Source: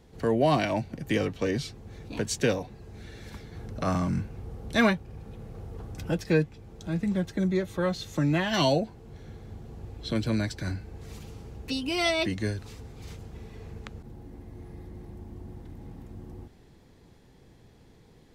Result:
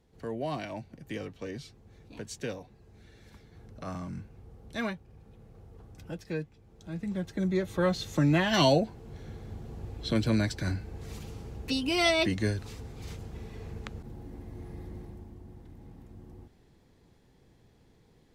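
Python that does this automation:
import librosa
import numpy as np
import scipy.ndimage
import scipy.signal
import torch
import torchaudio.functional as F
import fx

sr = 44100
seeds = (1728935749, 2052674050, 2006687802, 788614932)

y = fx.gain(x, sr, db=fx.line((6.63, -11.0), (7.83, 1.0), (14.95, 1.0), (15.39, -6.0)))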